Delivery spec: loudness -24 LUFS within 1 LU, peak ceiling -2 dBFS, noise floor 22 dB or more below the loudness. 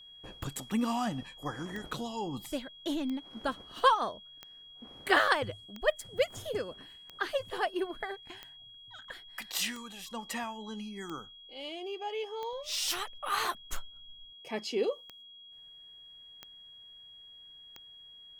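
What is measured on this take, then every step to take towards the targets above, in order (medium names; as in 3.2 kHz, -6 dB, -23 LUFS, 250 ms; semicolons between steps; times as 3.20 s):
clicks found 14; steady tone 3.3 kHz; tone level -50 dBFS; loudness -34.0 LUFS; peak level -11.0 dBFS; loudness target -24.0 LUFS
-> de-click; band-stop 3.3 kHz, Q 30; trim +10 dB; peak limiter -2 dBFS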